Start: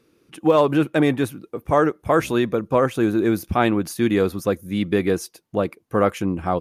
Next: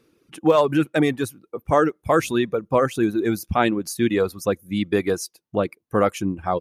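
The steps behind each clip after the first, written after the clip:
reverb reduction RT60 1.4 s
dynamic equaliser 6,800 Hz, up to +4 dB, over −47 dBFS, Q 0.88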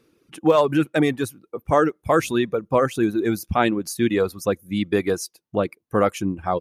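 no processing that can be heard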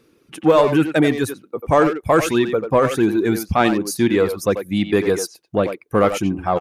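in parallel at −3.5 dB: soft clipping −15.5 dBFS, distortion −12 dB
on the sum: far-end echo of a speakerphone 90 ms, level −7 dB

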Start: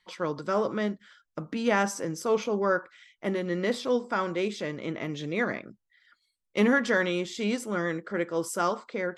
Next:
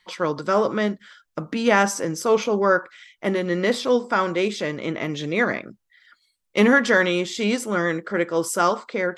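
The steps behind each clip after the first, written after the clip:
low-shelf EQ 420 Hz −3 dB
level +8 dB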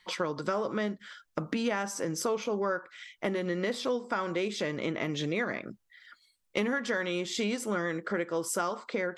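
downward compressor 6 to 1, threshold −28 dBFS, peak gain reduction 15 dB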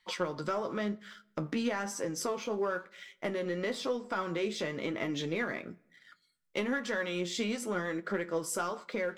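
leveller curve on the samples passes 1
flanger 1 Hz, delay 8.9 ms, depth 4.8 ms, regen +49%
convolution reverb RT60 0.85 s, pre-delay 8 ms, DRR 19.5 dB
level −2 dB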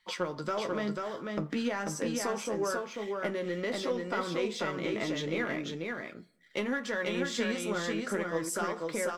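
single-tap delay 491 ms −3.5 dB

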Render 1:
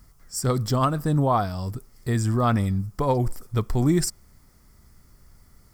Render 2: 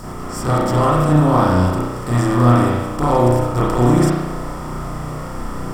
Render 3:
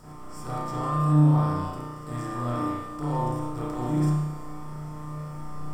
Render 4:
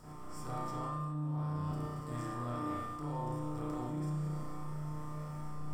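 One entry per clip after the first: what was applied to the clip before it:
compressor on every frequency bin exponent 0.4; spring reverb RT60 1 s, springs 33 ms, chirp 75 ms, DRR −8.5 dB; level −6 dB
tuned comb filter 150 Hz, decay 1.2 s, mix 90%
feedback delay that plays each chunk backwards 143 ms, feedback 69%, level −14 dB; reversed playback; downward compressor 16 to 1, threshold −28 dBFS, peak gain reduction 16 dB; reversed playback; level −5.5 dB

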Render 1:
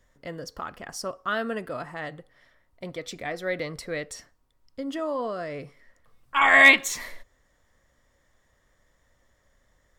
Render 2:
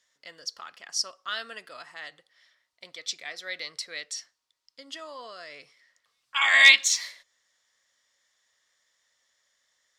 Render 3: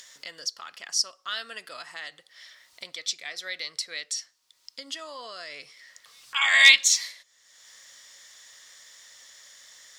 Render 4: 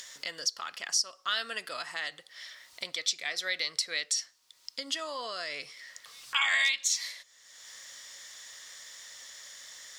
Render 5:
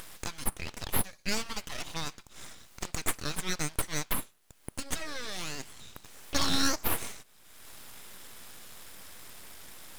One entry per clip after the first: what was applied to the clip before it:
dynamic equaliser 5,000 Hz, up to +5 dB, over −41 dBFS, Q 1.1; resonant band-pass 4,700 Hz, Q 1.3; level +6.5 dB
in parallel at +2 dB: upward compression, threshold −28 dBFS; on the sum: high-shelf EQ 2,600 Hz +8 dB; level −10.5 dB
downward compressor 8 to 1, threshold −27 dBFS, peak gain reduction 18 dB; level +3 dB
full-wave rectification; level +2 dB

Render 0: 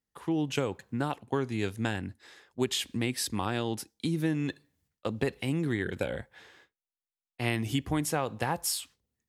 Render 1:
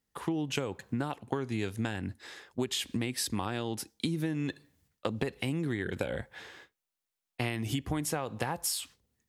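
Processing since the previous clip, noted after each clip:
downward compressor, threshold −35 dBFS, peak gain reduction 12 dB
level +6 dB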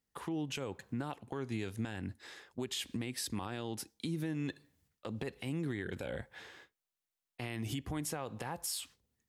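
brickwall limiter −23.5 dBFS, peak gain reduction 9.5 dB
level −4 dB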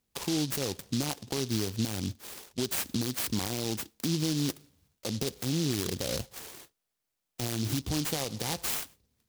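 short delay modulated by noise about 4,400 Hz, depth 0.21 ms
level +7.5 dB

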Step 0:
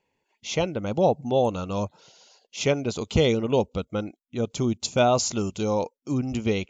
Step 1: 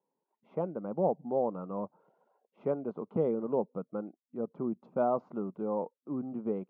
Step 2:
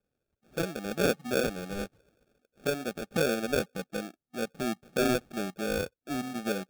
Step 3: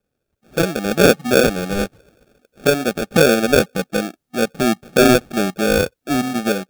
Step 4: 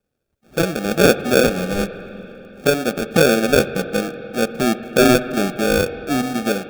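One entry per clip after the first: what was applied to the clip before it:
elliptic band-pass filter 170–1,200 Hz, stop band 80 dB; level −7.5 dB
sample-rate reduction 1,000 Hz, jitter 0%; level +2 dB
automatic gain control gain up to 8 dB; level +6.5 dB
convolution reverb RT60 3.4 s, pre-delay 44 ms, DRR 11.5 dB; level −1 dB

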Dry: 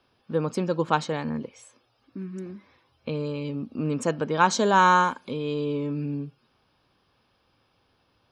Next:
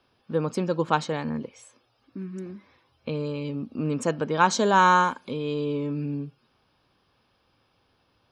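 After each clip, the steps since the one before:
no processing that can be heard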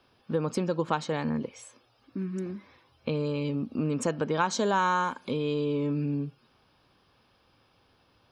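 downward compressor 3 to 1, threshold −28 dBFS, peak gain reduction 10.5 dB
level +2.5 dB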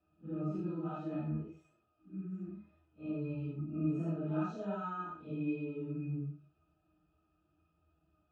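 random phases in long frames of 200 ms
resonances in every octave D#, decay 0.11 s
convolution reverb RT60 0.25 s, pre-delay 4 ms, DRR 5.5 dB

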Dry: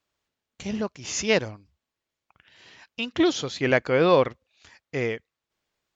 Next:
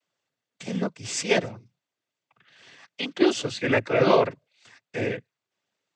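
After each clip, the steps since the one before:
cochlear-implant simulation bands 16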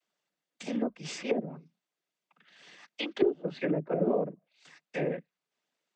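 treble cut that deepens with the level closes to 360 Hz, closed at −20 dBFS
frequency shifter +44 Hz
level −3 dB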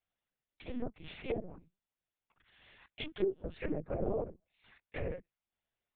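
linear-prediction vocoder at 8 kHz pitch kept
level −6.5 dB

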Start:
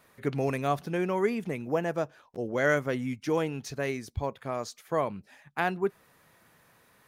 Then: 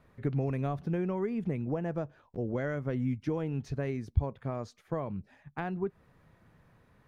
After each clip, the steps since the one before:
downward compressor 4 to 1, threshold −29 dBFS, peak gain reduction 8.5 dB
RIAA equalisation playback
level −4.5 dB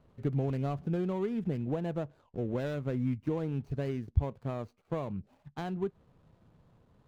running median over 25 samples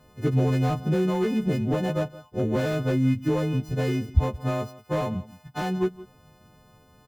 every partial snapped to a pitch grid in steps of 3 semitones
single-tap delay 169 ms −18.5 dB
slew-rate limiting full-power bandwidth 18 Hz
level +9 dB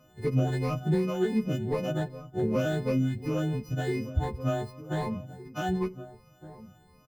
rippled gain that drifts along the octave scale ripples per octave 0.9, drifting +2.7 Hz, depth 15 dB
slap from a distant wall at 260 metres, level −15 dB
on a send at −19.5 dB: convolution reverb RT60 0.50 s, pre-delay 5 ms
on the sum: level −6 dB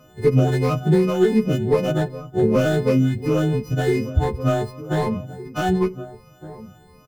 stylus tracing distortion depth 0.045 ms
hollow resonant body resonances 420/1,300 Hz, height 6 dB
level +8.5 dB

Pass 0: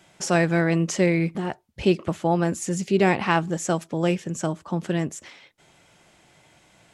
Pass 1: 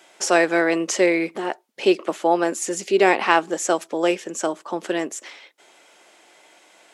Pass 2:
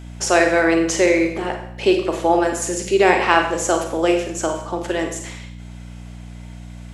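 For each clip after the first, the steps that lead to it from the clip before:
high-pass filter 320 Hz 24 dB per octave; level +5 dB
mains hum 60 Hz, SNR 15 dB; four-comb reverb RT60 0.68 s, combs from 33 ms, DRR 4 dB; level +1 dB

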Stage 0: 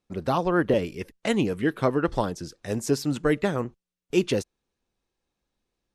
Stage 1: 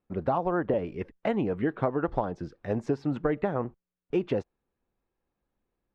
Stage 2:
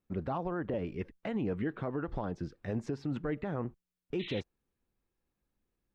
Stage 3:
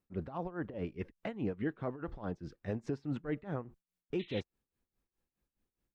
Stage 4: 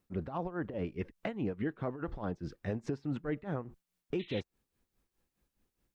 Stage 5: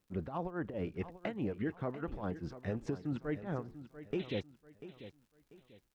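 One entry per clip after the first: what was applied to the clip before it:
low-pass filter 1,800 Hz 12 dB per octave; dynamic equaliser 750 Hz, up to +7 dB, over −40 dBFS, Q 1.8; downward compressor, threshold −23 dBFS, peak gain reduction 9 dB
parametric band 720 Hz −6.5 dB 2 octaves; brickwall limiter −25.5 dBFS, peak gain reduction 9 dB; sound drawn into the spectrogram noise, 0:04.19–0:04.41, 1,800–4,100 Hz −45 dBFS
amplitude tremolo 4.8 Hz, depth 84%
downward compressor 2 to 1, threshold −42 dBFS, peak gain reduction 7 dB; level +6.5 dB
surface crackle 130 per second −60 dBFS; repeating echo 691 ms, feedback 32%, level −13.5 dB; level −1.5 dB

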